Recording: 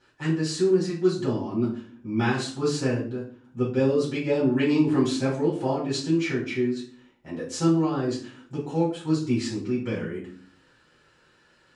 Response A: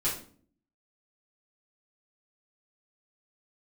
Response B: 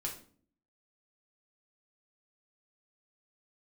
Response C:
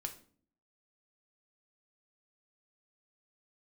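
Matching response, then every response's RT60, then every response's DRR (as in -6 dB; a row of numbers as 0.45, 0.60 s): A; 0.50, 0.50, 0.50 s; -9.0, -1.5, 4.5 dB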